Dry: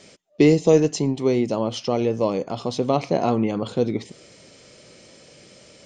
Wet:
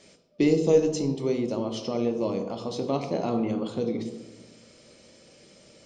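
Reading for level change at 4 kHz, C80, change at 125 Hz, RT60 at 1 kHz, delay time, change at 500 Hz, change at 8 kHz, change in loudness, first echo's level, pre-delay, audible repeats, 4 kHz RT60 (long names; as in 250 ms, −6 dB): −6.0 dB, 11.0 dB, −7.0 dB, 1.0 s, no echo audible, −5.0 dB, −6.0 dB, −5.5 dB, no echo audible, 3 ms, no echo audible, 0.70 s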